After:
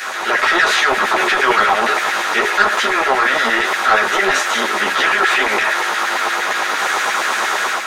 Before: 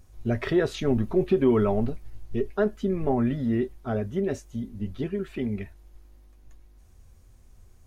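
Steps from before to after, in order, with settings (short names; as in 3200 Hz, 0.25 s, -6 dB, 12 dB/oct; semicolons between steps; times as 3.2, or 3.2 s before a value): per-bin compression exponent 0.4; AGC gain up to 7 dB; LFO high-pass saw down 8.6 Hz 940–1900 Hz; soft clip -17 dBFS, distortion -14 dB; maximiser +22.5 dB; ensemble effect; gain -3 dB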